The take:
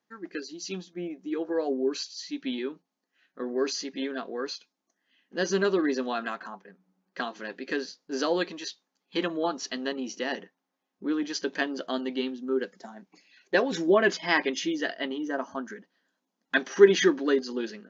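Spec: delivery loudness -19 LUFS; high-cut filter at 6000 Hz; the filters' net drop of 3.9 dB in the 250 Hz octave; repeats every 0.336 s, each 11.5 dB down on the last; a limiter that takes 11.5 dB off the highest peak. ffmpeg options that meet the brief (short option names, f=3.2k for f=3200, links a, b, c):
-af "lowpass=6k,equalizer=f=250:t=o:g=-5.5,alimiter=limit=-17dB:level=0:latency=1,aecho=1:1:336|672|1008:0.266|0.0718|0.0194,volume=13dB"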